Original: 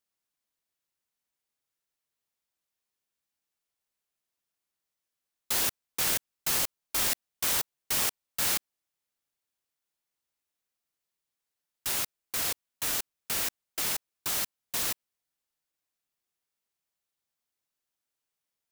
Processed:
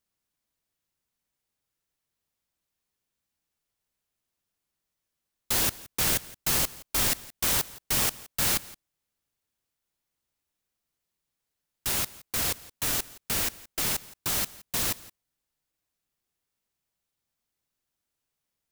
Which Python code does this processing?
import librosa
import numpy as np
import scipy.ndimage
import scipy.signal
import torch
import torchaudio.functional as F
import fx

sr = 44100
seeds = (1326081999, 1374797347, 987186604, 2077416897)

y = fx.low_shelf(x, sr, hz=250.0, db=10.0)
y = y + 10.0 ** (-20.5 / 20.0) * np.pad(y, (int(170 * sr / 1000.0), 0))[:len(y)]
y = F.gain(torch.from_numpy(y), 2.0).numpy()